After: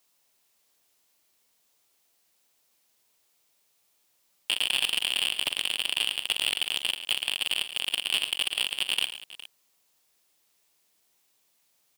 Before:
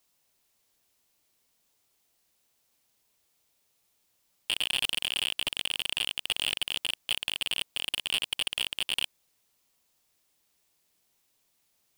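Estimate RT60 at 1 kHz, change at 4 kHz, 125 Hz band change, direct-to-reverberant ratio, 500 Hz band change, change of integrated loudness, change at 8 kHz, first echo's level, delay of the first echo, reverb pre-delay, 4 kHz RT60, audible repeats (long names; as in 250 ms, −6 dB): no reverb audible, +3.0 dB, can't be measured, no reverb audible, +2.0 dB, +3.0 dB, +3.0 dB, −13.5 dB, 44 ms, no reverb audible, no reverb audible, 3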